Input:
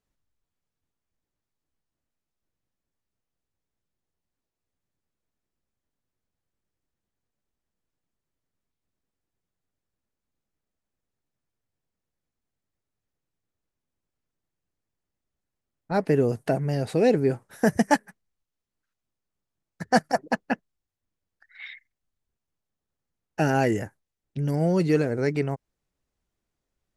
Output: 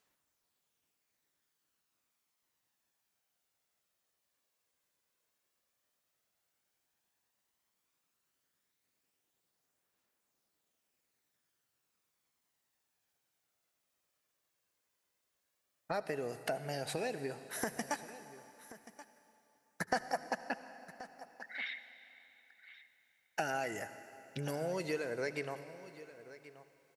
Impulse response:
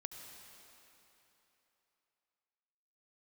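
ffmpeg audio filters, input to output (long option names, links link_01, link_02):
-filter_complex "[0:a]highpass=frequency=930:poles=1,acompressor=threshold=-44dB:ratio=5,aphaser=in_gain=1:out_gain=1:delay=2:decay=0.3:speed=0.1:type=triangular,aecho=1:1:1080:0.15,asplit=2[link_01][link_02];[1:a]atrim=start_sample=2205,highshelf=frequency=9000:gain=8[link_03];[link_02][link_03]afir=irnorm=-1:irlink=0,volume=0dB[link_04];[link_01][link_04]amix=inputs=2:normalize=0,volume=3.5dB"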